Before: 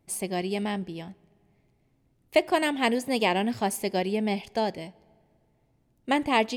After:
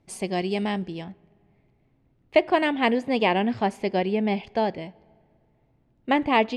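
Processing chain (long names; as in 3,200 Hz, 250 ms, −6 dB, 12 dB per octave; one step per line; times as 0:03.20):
low-pass filter 6,000 Hz 12 dB per octave, from 0:01.04 3,100 Hz
level +3 dB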